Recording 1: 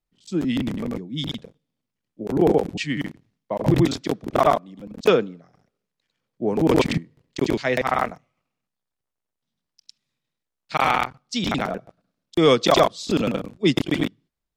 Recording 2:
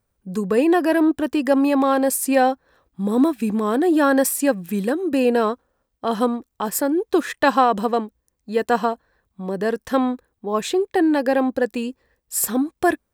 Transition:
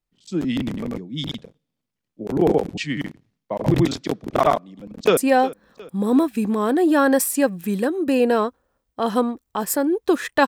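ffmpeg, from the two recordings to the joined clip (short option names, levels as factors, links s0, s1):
-filter_complex "[0:a]apad=whole_dur=10.47,atrim=end=10.47,atrim=end=5.172[s0];[1:a]atrim=start=2.218:end=7.52[s1];[s0][s1]acrossfade=d=0.004:c1=hsin:c2=hsin,asplit=2[s2][s3];[s3]afade=t=in:st=4.61:d=0.01,afade=t=out:st=5.17:d=0.01,aecho=0:1:360|720|1080|1440:0.133352|0.0666761|0.033338|0.016669[s4];[s2][s4]amix=inputs=2:normalize=0"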